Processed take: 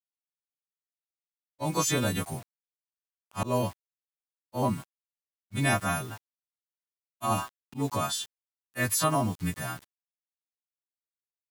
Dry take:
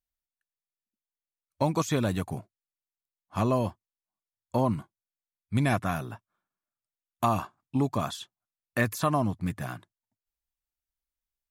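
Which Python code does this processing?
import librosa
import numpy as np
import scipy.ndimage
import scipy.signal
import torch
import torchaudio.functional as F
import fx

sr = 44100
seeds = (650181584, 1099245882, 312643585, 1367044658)

y = fx.freq_snap(x, sr, grid_st=2)
y = fx.quant_dither(y, sr, seeds[0], bits=8, dither='none')
y = fx.auto_swell(y, sr, attack_ms=121.0)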